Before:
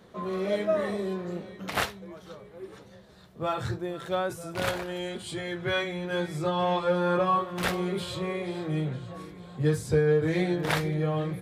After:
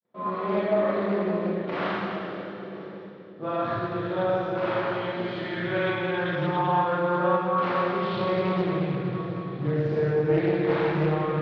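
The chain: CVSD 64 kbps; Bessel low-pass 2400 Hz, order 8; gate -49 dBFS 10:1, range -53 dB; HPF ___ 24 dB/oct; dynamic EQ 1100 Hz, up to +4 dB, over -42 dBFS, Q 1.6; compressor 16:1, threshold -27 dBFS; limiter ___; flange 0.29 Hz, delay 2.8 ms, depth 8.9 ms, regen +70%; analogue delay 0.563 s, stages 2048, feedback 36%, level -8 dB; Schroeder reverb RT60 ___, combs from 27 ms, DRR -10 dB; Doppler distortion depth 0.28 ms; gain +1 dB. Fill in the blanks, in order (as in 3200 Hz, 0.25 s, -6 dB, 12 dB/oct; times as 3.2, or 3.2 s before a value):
120 Hz, -21 dBFS, 2.5 s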